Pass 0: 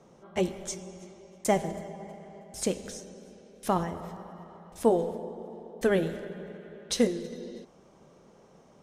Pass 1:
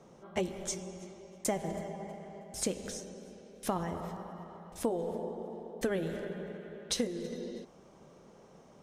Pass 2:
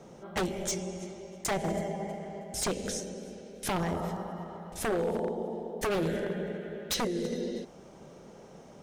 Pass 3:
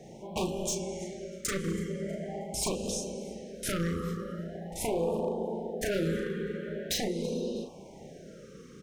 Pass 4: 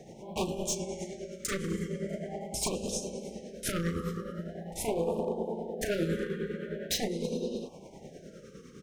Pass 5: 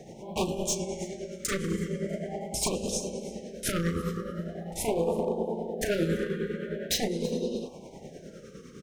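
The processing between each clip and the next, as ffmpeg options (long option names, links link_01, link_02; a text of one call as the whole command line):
ffmpeg -i in.wav -af "acompressor=threshold=-28dB:ratio=10" out.wav
ffmpeg -i in.wav -filter_complex "[0:a]equalizer=frequency=1100:width_type=o:width=0.21:gain=-6.5,acrossover=split=6600[link_01][link_02];[link_02]alimiter=level_in=10.5dB:limit=-24dB:level=0:latency=1:release=294,volume=-10.5dB[link_03];[link_01][link_03]amix=inputs=2:normalize=0,aeval=exprs='0.0316*(abs(mod(val(0)/0.0316+3,4)-2)-1)':channel_layout=same,volume=6.5dB" out.wav
ffmpeg -i in.wav -filter_complex "[0:a]acompressor=threshold=-35dB:ratio=1.5,asplit=2[link_01][link_02];[link_02]adelay=36,volume=-4.5dB[link_03];[link_01][link_03]amix=inputs=2:normalize=0,afftfilt=real='re*(1-between(b*sr/1024,760*pow(1700/760,0.5+0.5*sin(2*PI*0.43*pts/sr))/1.41,760*pow(1700/760,0.5+0.5*sin(2*PI*0.43*pts/sr))*1.41))':imag='im*(1-between(b*sr/1024,760*pow(1700/760,0.5+0.5*sin(2*PI*0.43*pts/sr))/1.41,760*pow(1700/760,0.5+0.5*sin(2*PI*0.43*pts/sr))*1.41))':win_size=1024:overlap=0.75,volume=1.5dB" out.wav
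ffmpeg -i in.wav -af "tremolo=f=9.8:d=0.5,volume=1.5dB" out.wav
ffmpeg -i in.wav -af "aecho=1:1:337:0.0708,volume=3dB" out.wav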